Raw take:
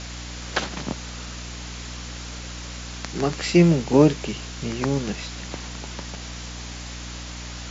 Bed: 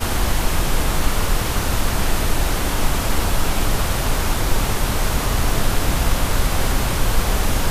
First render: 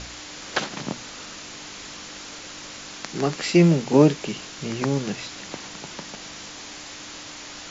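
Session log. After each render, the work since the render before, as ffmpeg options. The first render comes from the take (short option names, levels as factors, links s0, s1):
-af "bandreject=f=60:t=h:w=4,bandreject=f=120:t=h:w=4,bandreject=f=180:t=h:w=4,bandreject=f=240:t=h:w=4"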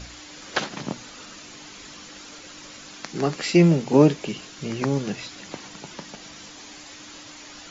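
-af "afftdn=nr=7:nf=-39"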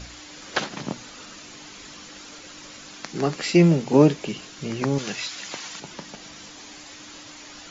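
-filter_complex "[0:a]asettb=1/sr,asplit=3[s0][s1][s2];[s0]atrim=end=4.984[s3];[s1]atrim=start=4.98:end=5.8,asetpts=PTS-STARTPTS,afade=t=in:d=0.004:c=qsin,afade=t=out:st=0.816:d=0.004:c=qsin,tiltshelf=f=680:g=-7[s4];[s2]atrim=start=5.796[s5];[s3][s4]acrossfade=d=0.004:c1=hsin:c2=qsin[s6];[s6][s5]acrossfade=d=0.004:c1=qsin:c2=hsin"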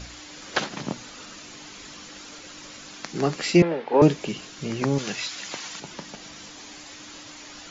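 -filter_complex "[0:a]asettb=1/sr,asplit=3[s0][s1][s2];[s0]atrim=end=3.624[s3];[s1]atrim=start=3.62:end=4.02,asetpts=PTS-STARTPTS,afade=t=in:d=0.004:c=qsin,afade=t=out:st=0.396:d=0.004:c=qsin,highpass=490,equalizer=f=490:t=q:w=4:g=6,equalizer=f=860:t=q:w=4:g=5,equalizer=f=1700:t=q:w=4:g=7,equalizer=f=2800:t=q:w=4:g=-4,lowpass=f=3400:w=0.5412,lowpass=f=3400:w=1.3066[s4];[s2]atrim=start=4.016[s5];[s3][s4]acrossfade=d=0.004:c1=hsin:c2=qsin[s6];[s6][s5]acrossfade=d=0.004:c1=qsin:c2=hsin"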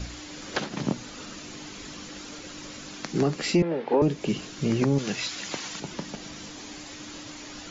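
-filter_complex "[0:a]acrossover=split=480[s0][s1];[s0]acontrast=52[s2];[s2][s1]amix=inputs=2:normalize=0,alimiter=limit=0.211:level=0:latency=1:release=293"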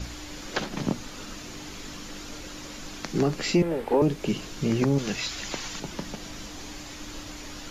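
-filter_complex "[1:a]volume=0.0447[s0];[0:a][s0]amix=inputs=2:normalize=0"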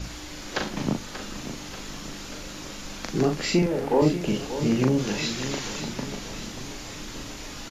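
-filter_complex "[0:a]asplit=2[s0][s1];[s1]adelay=39,volume=0.596[s2];[s0][s2]amix=inputs=2:normalize=0,aecho=1:1:585|1170|1755|2340|2925|3510:0.282|0.155|0.0853|0.0469|0.0258|0.0142"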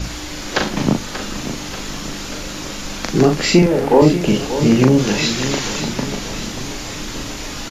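-af "volume=3.16,alimiter=limit=0.891:level=0:latency=1"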